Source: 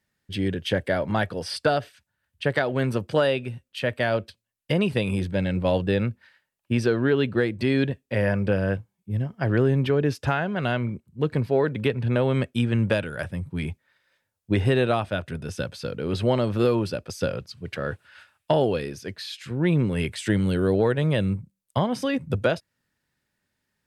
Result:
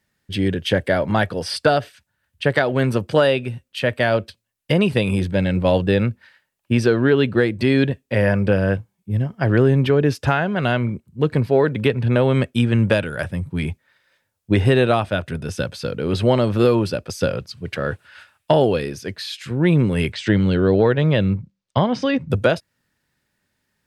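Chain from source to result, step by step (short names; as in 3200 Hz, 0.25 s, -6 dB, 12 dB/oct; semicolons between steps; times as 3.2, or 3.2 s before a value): 20.12–22.3 LPF 5700 Hz 24 dB/oct; gain +5.5 dB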